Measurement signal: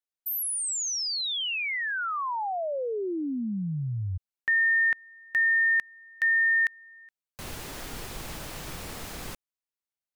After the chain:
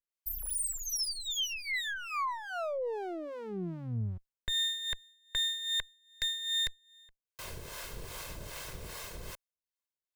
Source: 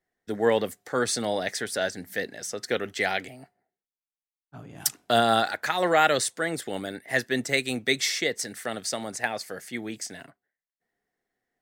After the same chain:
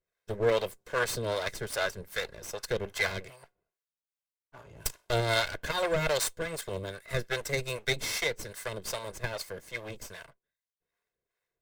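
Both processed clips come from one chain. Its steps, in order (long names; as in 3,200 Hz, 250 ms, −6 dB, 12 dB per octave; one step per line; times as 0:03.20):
lower of the sound and its delayed copy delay 1.9 ms
two-band tremolo in antiphase 2.5 Hz, depth 70%, crossover 540 Hz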